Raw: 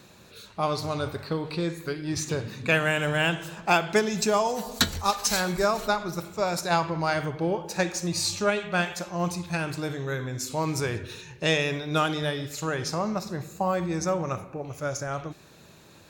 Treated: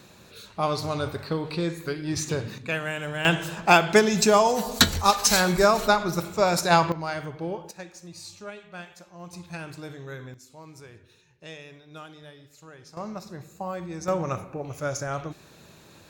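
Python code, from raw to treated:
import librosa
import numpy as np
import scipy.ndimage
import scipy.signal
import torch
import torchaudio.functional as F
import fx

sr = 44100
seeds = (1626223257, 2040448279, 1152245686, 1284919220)

y = fx.gain(x, sr, db=fx.steps((0.0, 1.0), (2.58, -6.0), (3.25, 5.0), (6.92, -5.0), (7.71, -15.0), (9.33, -8.0), (10.34, -18.5), (12.97, -7.0), (14.08, 1.0)))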